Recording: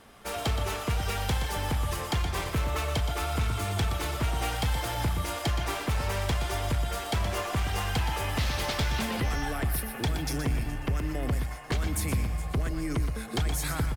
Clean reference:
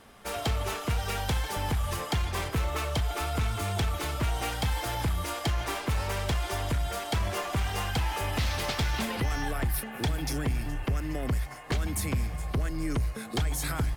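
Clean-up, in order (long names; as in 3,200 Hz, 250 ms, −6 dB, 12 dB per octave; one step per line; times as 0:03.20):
echo removal 121 ms −8.5 dB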